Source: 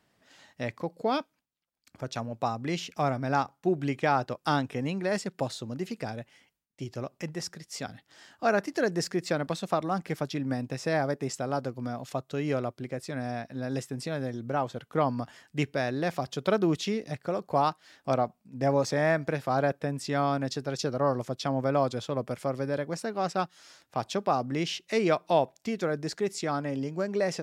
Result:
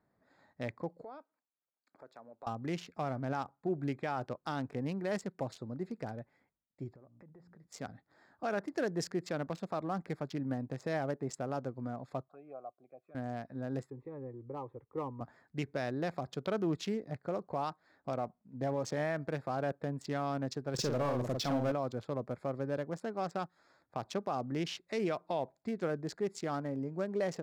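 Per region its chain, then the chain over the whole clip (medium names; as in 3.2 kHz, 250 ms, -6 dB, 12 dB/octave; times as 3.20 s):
1.03–2.47 s: high-pass 390 Hz + compression 2:1, threshold -49 dBFS
6.93–7.67 s: low-pass 1.3 kHz 6 dB/octave + de-hum 58.75 Hz, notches 5 + compression 12:1, threshold -48 dBFS
12.28–13.15 s: vowel filter a + touch-sensitive phaser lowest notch 380 Hz, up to 4.2 kHz, full sweep at -37 dBFS + three bands compressed up and down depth 40%
13.90–15.21 s: tape spacing loss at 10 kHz 42 dB + static phaser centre 1 kHz, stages 8
20.74–21.72 s: power-law waveshaper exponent 0.7 + doubling 48 ms -5 dB
whole clip: local Wiener filter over 15 samples; peak limiter -19.5 dBFS; trim -5 dB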